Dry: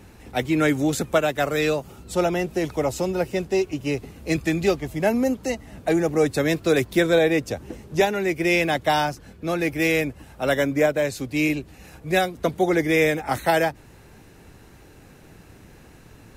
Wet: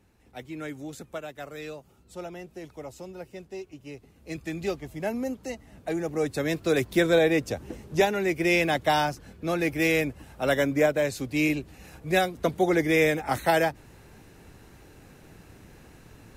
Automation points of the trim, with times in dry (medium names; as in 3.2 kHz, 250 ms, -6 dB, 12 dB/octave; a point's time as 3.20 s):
4.03 s -16.5 dB
4.66 s -9 dB
5.93 s -9 dB
7.05 s -2.5 dB